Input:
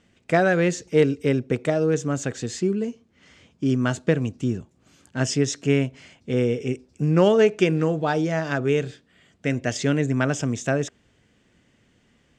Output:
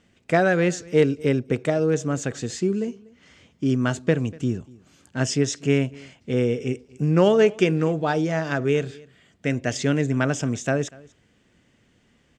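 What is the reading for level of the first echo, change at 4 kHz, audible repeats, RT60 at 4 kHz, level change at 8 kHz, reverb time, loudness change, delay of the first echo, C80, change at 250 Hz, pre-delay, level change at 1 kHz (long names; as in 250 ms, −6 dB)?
−23.5 dB, 0.0 dB, 1, no reverb audible, 0.0 dB, no reverb audible, 0.0 dB, 242 ms, no reverb audible, 0.0 dB, no reverb audible, 0.0 dB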